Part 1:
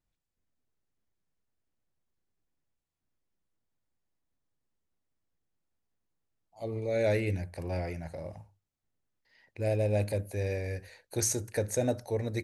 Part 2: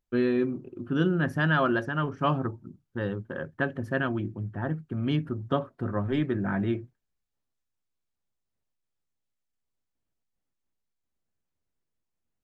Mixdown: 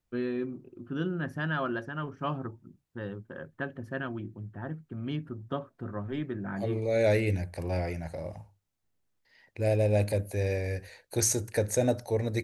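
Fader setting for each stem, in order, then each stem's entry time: +3.0 dB, -7.0 dB; 0.00 s, 0.00 s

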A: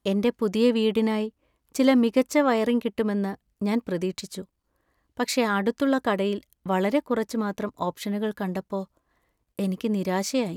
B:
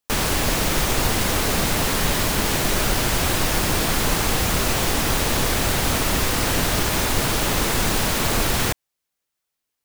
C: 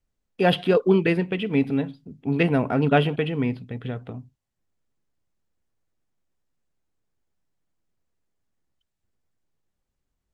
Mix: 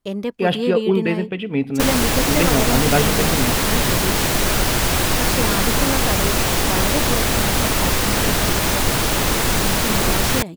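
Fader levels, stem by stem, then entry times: -2.0 dB, +2.5 dB, +0.5 dB; 0.00 s, 1.70 s, 0.00 s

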